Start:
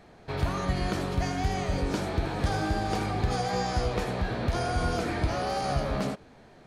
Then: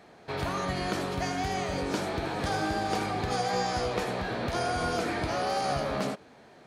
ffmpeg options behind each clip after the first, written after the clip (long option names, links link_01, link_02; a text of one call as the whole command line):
ffmpeg -i in.wav -af "highpass=frequency=250:poles=1,volume=1.5dB" out.wav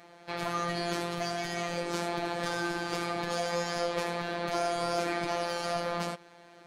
ffmpeg -i in.wav -af "lowshelf=frequency=170:gain=-10.5,asoftclip=type=tanh:threshold=-25dB,afftfilt=real='hypot(re,im)*cos(PI*b)':imag='0':win_size=1024:overlap=0.75,volume=4.5dB" out.wav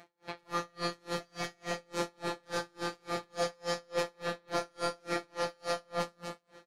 ffmpeg -i in.wav -filter_complex "[0:a]asplit=2[link_01][link_02];[link_02]aecho=0:1:66|101|228|358:0.596|0.501|0.562|0.282[link_03];[link_01][link_03]amix=inputs=2:normalize=0,aeval=exprs='val(0)*pow(10,-37*(0.5-0.5*cos(2*PI*3.5*n/s))/20)':channel_layout=same" out.wav